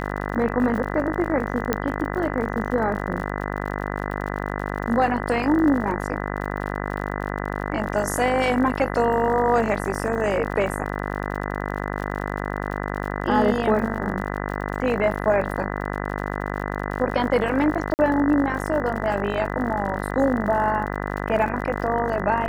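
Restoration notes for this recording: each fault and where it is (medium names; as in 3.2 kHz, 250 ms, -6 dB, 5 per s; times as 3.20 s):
buzz 50 Hz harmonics 40 -28 dBFS
crackle 65 per s -32 dBFS
1.73 s: pop -7 dBFS
17.94–17.99 s: dropout 49 ms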